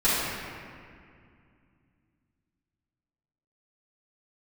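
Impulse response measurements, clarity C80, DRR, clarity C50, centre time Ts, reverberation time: -1.0 dB, -11.5 dB, -3.5 dB, 0.151 s, 2.2 s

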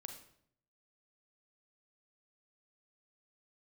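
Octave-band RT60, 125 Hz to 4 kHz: 0.90, 0.80, 0.70, 0.60, 0.55, 0.55 s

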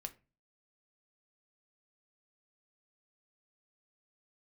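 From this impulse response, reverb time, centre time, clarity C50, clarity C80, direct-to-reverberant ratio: 0.30 s, 5 ms, 18.0 dB, 24.0 dB, 7.0 dB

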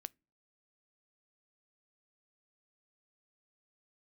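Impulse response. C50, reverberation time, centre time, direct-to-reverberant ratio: 31.5 dB, not exponential, 1 ms, 19.0 dB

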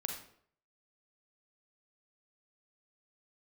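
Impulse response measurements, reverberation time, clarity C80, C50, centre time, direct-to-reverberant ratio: 0.60 s, 8.5 dB, 5.0 dB, 27 ms, 2.5 dB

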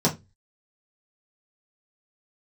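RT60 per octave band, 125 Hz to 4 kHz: 0.40, 0.30, 0.25, 0.20, 0.20, 0.20 s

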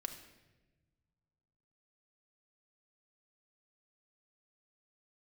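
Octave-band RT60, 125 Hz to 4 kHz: 2.4, 1.9, 1.4, 0.95, 1.1, 0.90 s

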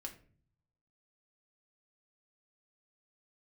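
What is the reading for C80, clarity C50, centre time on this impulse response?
16.5 dB, 12.0 dB, 11 ms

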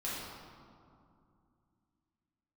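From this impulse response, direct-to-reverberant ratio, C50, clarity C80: -9.0 dB, -2.5 dB, 0.0 dB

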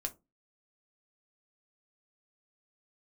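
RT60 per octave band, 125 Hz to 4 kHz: 0.35, 0.35, 0.25, 0.20, 0.15, 0.15 s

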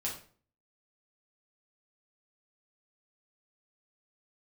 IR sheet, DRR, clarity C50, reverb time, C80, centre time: -4.5 dB, 6.5 dB, 0.45 s, 11.5 dB, 27 ms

